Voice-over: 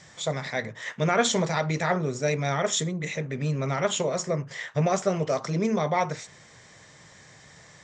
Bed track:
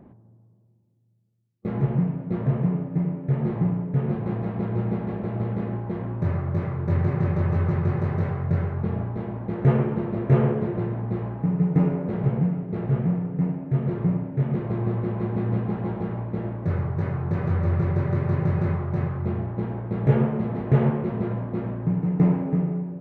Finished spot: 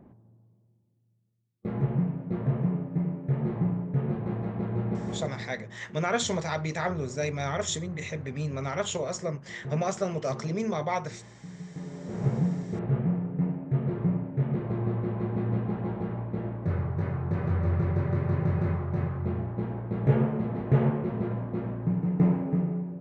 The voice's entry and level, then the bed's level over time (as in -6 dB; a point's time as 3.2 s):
4.95 s, -4.5 dB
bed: 5.17 s -4 dB
5.6 s -20 dB
11.79 s -20 dB
12.25 s -3.5 dB